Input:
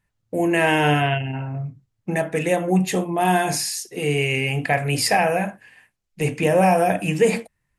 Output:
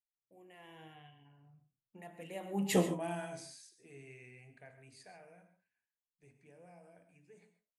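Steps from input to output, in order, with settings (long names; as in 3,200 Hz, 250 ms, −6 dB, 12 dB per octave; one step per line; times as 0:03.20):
source passing by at 0:02.77, 22 m/s, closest 1.1 metres
reverb whose tail is shaped and stops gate 160 ms rising, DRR 10 dB
level −5 dB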